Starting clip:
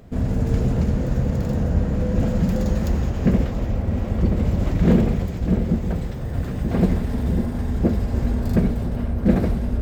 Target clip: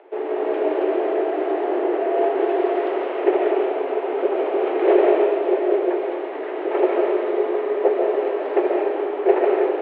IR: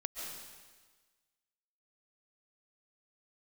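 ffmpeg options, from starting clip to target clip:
-filter_complex "[0:a]acrusher=bits=8:mode=log:mix=0:aa=0.000001,highpass=f=190:t=q:w=0.5412,highpass=f=190:t=q:w=1.307,lowpass=f=2900:t=q:w=0.5176,lowpass=f=2900:t=q:w=0.7071,lowpass=f=2900:t=q:w=1.932,afreqshift=180[s0];[1:a]atrim=start_sample=2205[s1];[s0][s1]afir=irnorm=-1:irlink=0,volume=1.78"

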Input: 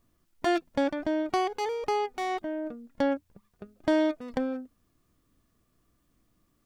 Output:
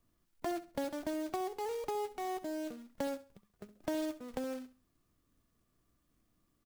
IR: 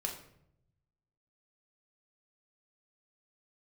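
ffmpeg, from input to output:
-filter_complex "[0:a]acrossover=split=310|1100[s0][s1][s2];[s0]acompressor=threshold=0.0126:ratio=4[s3];[s1]acompressor=threshold=0.0316:ratio=4[s4];[s2]acompressor=threshold=0.00447:ratio=4[s5];[s3][s4][s5]amix=inputs=3:normalize=0,acrusher=bits=3:mode=log:mix=0:aa=0.000001,aecho=1:1:67|134|201:0.168|0.0487|0.0141,volume=0.501"

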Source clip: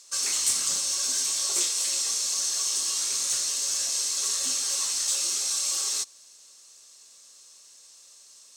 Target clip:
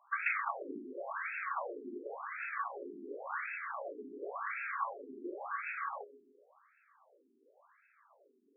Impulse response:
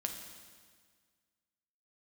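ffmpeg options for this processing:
-filter_complex "[0:a]adynamicsmooth=sensitivity=2:basefreq=1600,asplit=2[s0][s1];[1:a]atrim=start_sample=2205,afade=t=out:st=0.42:d=0.01,atrim=end_sample=18963,asetrate=36162,aresample=44100[s2];[s1][s2]afir=irnorm=-1:irlink=0,volume=0.398[s3];[s0][s3]amix=inputs=2:normalize=0,afftfilt=real='re*between(b*sr/1024,290*pow(1900/290,0.5+0.5*sin(2*PI*0.92*pts/sr))/1.41,290*pow(1900/290,0.5+0.5*sin(2*PI*0.92*pts/sr))*1.41)':imag='im*between(b*sr/1024,290*pow(1900/290,0.5+0.5*sin(2*PI*0.92*pts/sr))/1.41,290*pow(1900/290,0.5+0.5*sin(2*PI*0.92*pts/sr))*1.41)':win_size=1024:overlap=0.75,volume=2.82"

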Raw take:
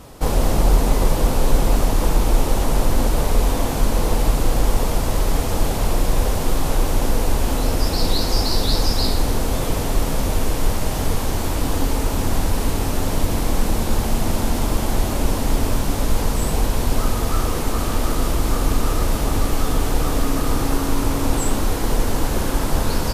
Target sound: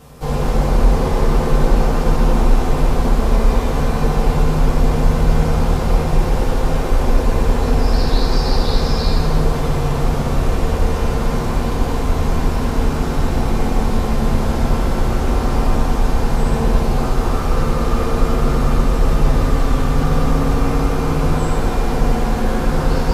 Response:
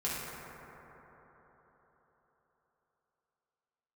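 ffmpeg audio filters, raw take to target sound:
-filter_complex "[0:a]acrossover=split=6400[s0][s1];[s1]acompressor=threshold=0.00708:ratio=4:attack=1:release=60[s2];[s0][s2]amix=inputs=2:normalize=0[s3];[1:a]atrim=start_sample=2205[s4];[s3][s4]afir=irnorm=-1:irlink=0,areverse,acompressor=mode=upward:threshold=0.0794:ratio=2.5,areverse,volume=0.631"

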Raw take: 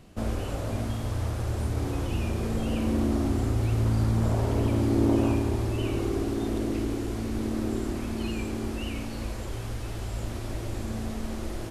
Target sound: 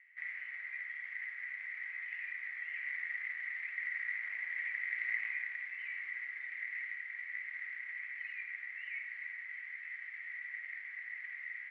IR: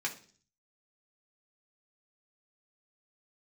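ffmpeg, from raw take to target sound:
-filter_complex "[0:a]acrusher=bits=3:mode=log:mix=0:aa=0.000001,asuperpass=centerf=2000:order=4:qfactor=7.7,asplit=2[s0][s1];[1:a]atrim=start_sample=2205[s2];[s1][s2]afir=irnorm=-1:irlink=0,volume=0.398[s3];[s0][s3]amix=inputs=2:normalize=0,volume=2.82"

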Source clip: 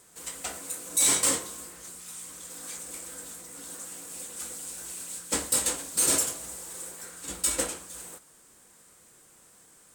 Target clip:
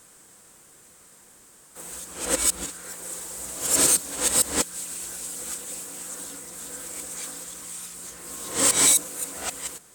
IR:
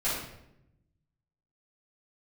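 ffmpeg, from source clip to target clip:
-af "areverse,volume=1.68"

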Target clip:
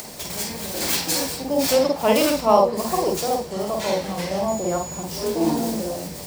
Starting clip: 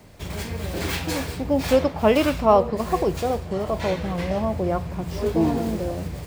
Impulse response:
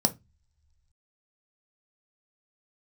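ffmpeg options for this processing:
-filter_complex "[0:a]asettb=1/sr,asplit=3[s0][s1][s2];[s0]atrim=end=4.484[s3];[s1]atrim=start=4.48:end=5.03,asetpts=PTS-STARTPTS,afade=t=in:d=0.004:c=qsin,afade=t=out:st=0.546:d=0.004:c=qsin,aeval=exprs='val(0)+0.00562*sin(2*PI*6900*n/s)':c=same[s4];[s2]atrim=start=5.026[s5];[s3][s4]acrossfade=d=0.004:c1=hsin:c2=qsin[s6];[s6][s5]acrossfade=d=0.004:c1=qsin:c2=hsin,acompressor=mode=upward:threshold=0.0398:ratio=2.5,bass=f=250:g=-12,treble=f=4000:g=14,asplit=2[s7][s8];[1:a]atrim=start_sample=2205,lowpass=5100,adelay=48[s9];[s8][s9]afir=irnorm=-1:irlink=0,volume=0.237[s10];[s7][s10]amix=inputs=2:normalize=0,volume=0.841"

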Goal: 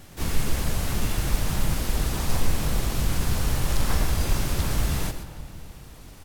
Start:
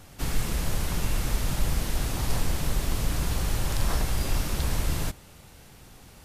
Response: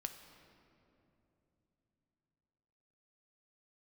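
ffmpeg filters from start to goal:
-filter_complex "[0:a]asplit=2[s0][s1];[s1]adelay=304,lowpass=f=1500:p=1,volume=0.168,asplit=2[s2][s3];[s3]adelay=304,lowpass=f=1500:p=1,volume=0.54,asplit=2[s4][s5];[s5]adelay=304,lowpass=f=1500:p=1,volume=0.54,asplit=2[s6][s7];[s7]adelay=304,lowpass=f=1500:p=1,volume=0.54,asplit=2[s8][s9];[s9]adelay=304,lowpass=f=1500:p=1,volume=0.54[s10];[s0][s2][s4][s6][s8][s10]amix=inputs=6:normalize=0,asplit=2[s11][s12];[s12]asetrate=55563,aresample=44100,atempo=0.793701,volume=0.708[s13];[s11][s13]amix=inputs=2:normalize=0,asplit=2[s14][s15];[1:a]atrim=start_sample=2205,adelay=123[s16];[s15][s16]afir=irnorm=-1:irlink=0,volume=0.447[s17];[s14][s17]amix=inputs=2:normalize=0"

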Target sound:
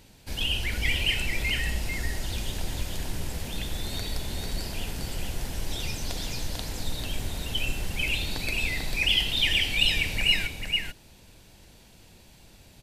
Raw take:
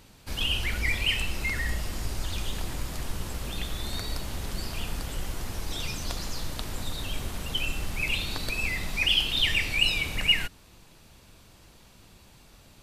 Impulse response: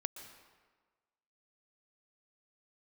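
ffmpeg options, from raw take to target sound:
-filter_complex "[0:a]equalizer=f=1200:w=3.7:g=-9.5,asplit=2[s0][s1];[s1]aecho=0:1:444:0.596[s2];[s0][s2]amix=inputs=2:normalize=0"

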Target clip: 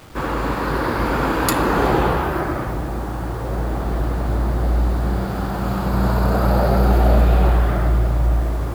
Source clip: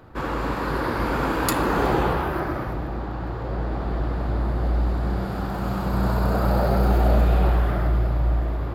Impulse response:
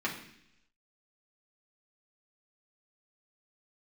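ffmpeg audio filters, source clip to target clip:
-af "acrusher=bits=7:mix=0:aa=0.000001,volume=1.58"

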